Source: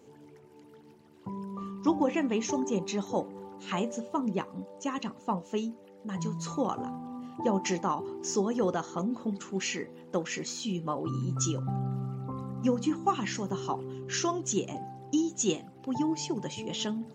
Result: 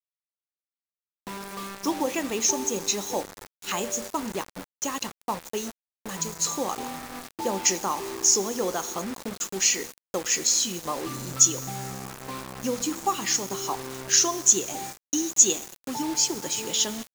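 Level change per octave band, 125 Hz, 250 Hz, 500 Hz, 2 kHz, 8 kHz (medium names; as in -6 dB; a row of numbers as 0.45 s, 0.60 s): -6.5 dB, -2.5 dB, +1.0 dB, +5.5 dB, +16.0 dB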